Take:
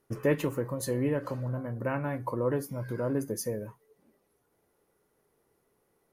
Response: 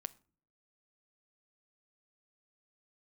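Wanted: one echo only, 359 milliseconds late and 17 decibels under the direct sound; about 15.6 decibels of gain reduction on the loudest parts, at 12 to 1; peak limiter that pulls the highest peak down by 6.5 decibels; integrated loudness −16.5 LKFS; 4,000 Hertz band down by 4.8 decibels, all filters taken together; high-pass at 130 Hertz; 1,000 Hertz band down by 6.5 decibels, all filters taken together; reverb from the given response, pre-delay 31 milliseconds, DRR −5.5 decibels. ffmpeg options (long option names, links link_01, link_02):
-filter_complex "[0:a]highpass=130,equalizer=frequency=1000:width_type=o:gain=-7.5,equalizer=frequency=4000:width_type=o:gain=-6,acompressor=threshold=-38dB:ratio=12,alimiter=level_in=10.5dB:limit=-24dB:level=0:latency=1,volume=-10.5dB,aecho=1:1:359:0.141,asplit=2[link_01][link_02];[1:a]atrim=start_sample=2205,adelay=31[link_03];[link_02][link_03]afir=irnorm=-1:irlink=0,volume=8.5dB[link_04];[link_01][link_04]amix=inputs=2:normalize=0,volume=21.5dB"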